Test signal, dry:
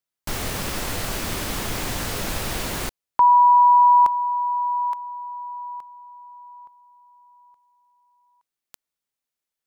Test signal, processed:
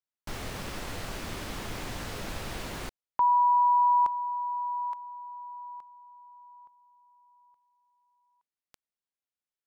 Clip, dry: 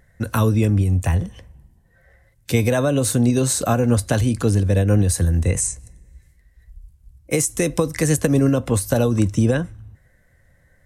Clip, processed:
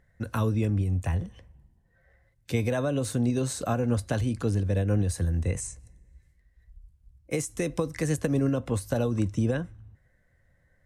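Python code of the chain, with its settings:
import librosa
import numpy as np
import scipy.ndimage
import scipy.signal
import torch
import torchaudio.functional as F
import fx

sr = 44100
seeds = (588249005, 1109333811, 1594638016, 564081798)

y = fx.high_shelf(x, sr, hz=7400.0, db=-10.0)
y = F.gain(torch.from_numpy(y), -8.5).numpy()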